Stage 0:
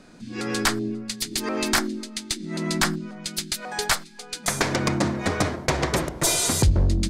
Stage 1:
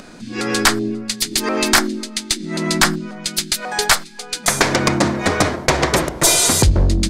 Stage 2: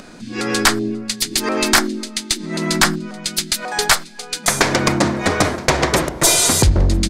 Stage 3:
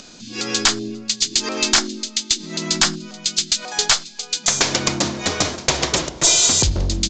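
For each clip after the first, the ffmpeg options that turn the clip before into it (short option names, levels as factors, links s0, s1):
-af "equalizer=f=100:w=0.43:g=-4.5,acompressor=mode=upward:threshold=0.00708:ratio=2.5,volume=2.66"
-af "aecho=1:1:972:0.0841"
-af "aexciter=amount=2.7:drive=8.1:freq=2700,aresample=16000,aresample=44100,volume=0.473"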